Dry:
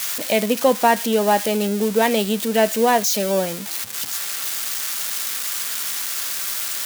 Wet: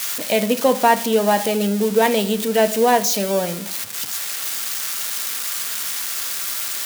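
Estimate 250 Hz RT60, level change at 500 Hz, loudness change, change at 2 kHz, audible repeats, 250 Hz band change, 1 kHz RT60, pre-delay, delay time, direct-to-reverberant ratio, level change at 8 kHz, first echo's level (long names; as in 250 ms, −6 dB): 0.75 s, +1.0 dB, +0.5 dB, 0.0 dB, no echo audible, +0.5 dB, 0.60 s, 4 ms, no echo audible, 10.0 dB, +0.5 dB, no echo audible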